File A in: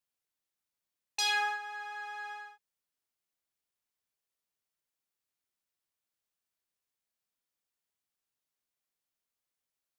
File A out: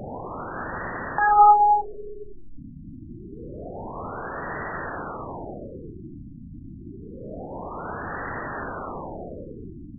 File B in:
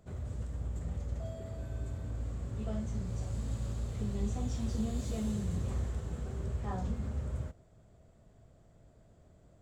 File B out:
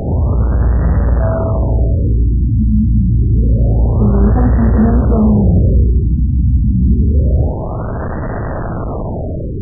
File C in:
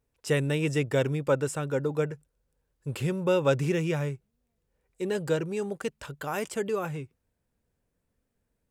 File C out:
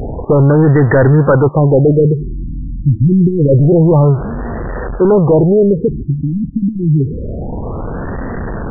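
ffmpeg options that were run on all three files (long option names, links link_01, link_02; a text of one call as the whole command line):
ffmpeg -i in.wav -af "aeval=exprs='val(0)+0.5*0.0168*sgn(val(0))':channel_layout=same,apsyclip=26.5dB,afftfilt=real='re*lt(b*sr/1024,300*pow(2000/300,0.5+0.5*sin(2*PI*0.27*pts/sr)))':imag='im*lt(b*sr/1024,300*pow(2000/300,0.5+0.5*sin(2*PI*0.27*pts/sr)))':win_size=1024:overlap=0.75,volume=-4.5dB" out.wav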